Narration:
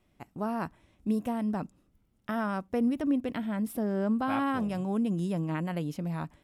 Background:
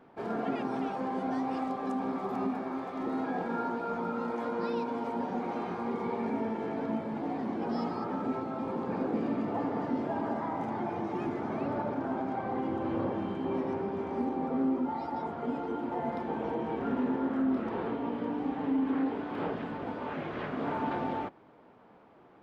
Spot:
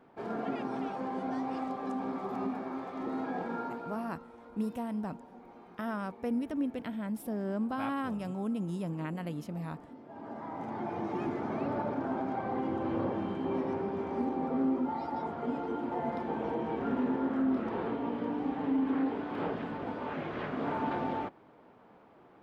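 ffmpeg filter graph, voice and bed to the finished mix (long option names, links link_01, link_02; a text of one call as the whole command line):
ffmpeg -i stem1.wav -i stem2.wav -filter_complex "[0:a]adelay=3500,volume=-5dB[link_01];[1:a]volume=15.5dB,afade=type=out:start_time=3.46:duration=0.79:silence=0.158489,afade=type=in:start_time=10.06:duration=1.04:silence=0.125893[link_02];[link_01][link_02]amix=inputs=2:normalize=0" out.wav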